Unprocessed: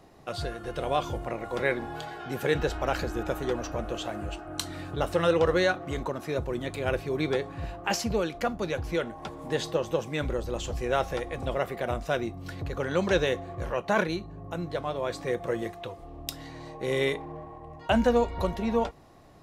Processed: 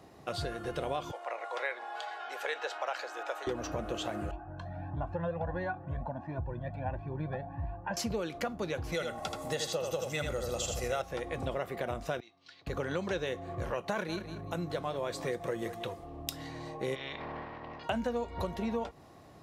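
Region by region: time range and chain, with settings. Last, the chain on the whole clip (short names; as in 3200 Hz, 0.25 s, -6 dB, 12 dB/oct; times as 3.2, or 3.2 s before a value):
1.11–3.47 HPF 590 Hz 24 dB/oct + air absorption 53 m
4.31–7.97 LPF 1100 Hz + comb 1.2 ms, depth 80% + cascading flanger rising 1.5 Hz
8.92–11.02 tone controls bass -3 dB, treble +9 dB + comb 1.5 ms, depth 52% + echo 80 ms -5 dB
12.2–12.67 band-pass 4300 Hz, Q 1.6 + air absorption 120 m
13.73–15.99 high shelf 5600 Hz +5.5 dB + feedback echo 0.187 s, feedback 22%, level -16 dB
16.94–17.83 spectral limiter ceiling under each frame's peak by 22 dB + steep low-pass 5000 Hz + compressor, threshold -35 dBFS
whole clip: HPF 62 Hz; compressor 5:1, threshold -31 dBFS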